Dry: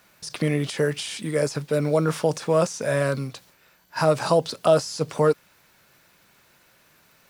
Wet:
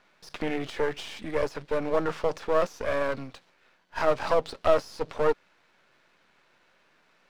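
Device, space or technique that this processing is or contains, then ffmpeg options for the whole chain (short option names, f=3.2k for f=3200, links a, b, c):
crystal radio: -af "highpass=230,lowpass=3.3k,aeval=exprs='if(lt(val(0),0),0.251*val(0),val(0))':c=same"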